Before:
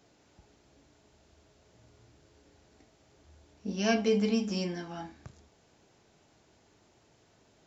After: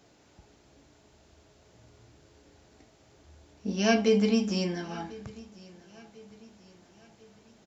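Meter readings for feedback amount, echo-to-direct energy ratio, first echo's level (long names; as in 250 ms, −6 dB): 47%, −20.5 dB, −21.5 dB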